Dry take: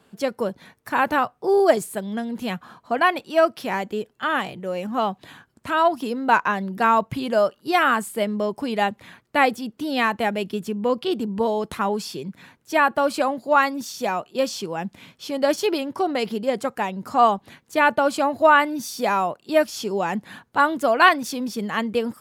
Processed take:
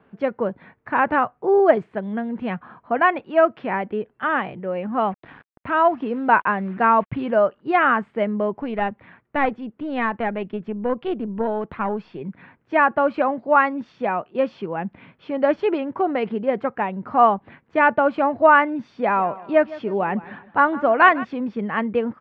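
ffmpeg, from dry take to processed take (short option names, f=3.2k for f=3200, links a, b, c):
-filter_complex "[0:a]asettb=1/sr,asplit=3[a][b][c];[a]atrim=end=5.024[d];[b]atrim=start=5.02:end=7.31,asetpts=PTS-STARTPTS,afade=t=in:d=0.004:c=qsin,afade=t=out:st=2.286:d=0.004:c=qsin,acrusher=bits=6:mix=0:aa=0.5[e];[c]atrim=start=7.306[f];[d][e]acrossfade=d=0.004:c1=hsin:c2=qsin[g];[g][f]acrossfade=d=0.004:c1=qsin:c2=hsin,asettb=1/sr,asplit=3[h][i][j];[h]atrim=end=8.584[k];[i]atrim=start=8.58:end=12.21,asetpts=PTS-STARTPTS,afade=t=in:d=0.004:c=qsin,afade=t=out:st=3.626:d=0.004:c=qsin,aeval=exprs='(tanh(3.55*val(0)+0.6)-tanh(0.6))/3.55':c=same[l];[j]atrim=start=12.206[m];[k][l]acrossfade=d=0.004:c1=hsin:c2=qsin[n];[n][m]acrossfade=d=0.004:c1=qsin:c2=hsin,asplit=3[o][p][q];[o]afade=t=out:st=19.06:d=0.02[r];[p]aecho=1:1:157|314|471:0.126|0.0466|0.0172,afade=t=in:st=19.06:d=0.02,afade=t=out:st=21.23:d=0.02[s];[q]afade=t=in:st=21.23:d=0.02[t];[r][s][t]amix=inputs=3:normalize=0,lowpass=f=2.3k:w=0.5412,lowpass=f=2.3k:w=1.3066,volume=1.5dB"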